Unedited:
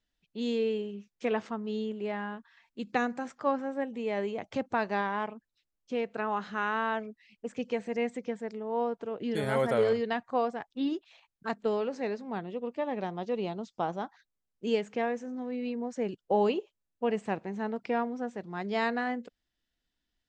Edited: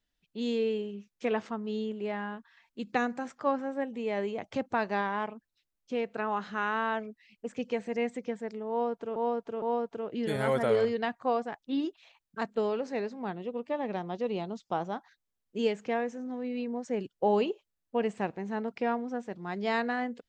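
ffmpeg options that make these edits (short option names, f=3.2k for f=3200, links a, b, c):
-filter_complex "[0:a]asplit=3[a][b][c];[a]atrim=end=9.162[d];[b]atrim=start=8.698:end=9.162[e];[c]atrim=start=8.698[f];[d][e]acrossfade=d=0.004:c1=hsin:c2=hsin[g];[g][f]acrossfade=d=0.004:c1=hsin:c2=hsin"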